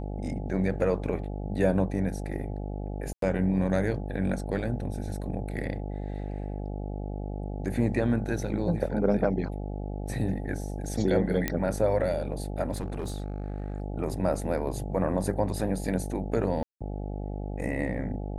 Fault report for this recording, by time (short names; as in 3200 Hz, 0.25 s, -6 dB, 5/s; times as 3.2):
buzz 50 Hz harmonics 17 -34 dBFS
3.13–3.22 gap 93 ms
11.48 pop -11 dBFS
12.72–13.8 clipped -28 dBFS
16.63–16.81 gap 0.176 s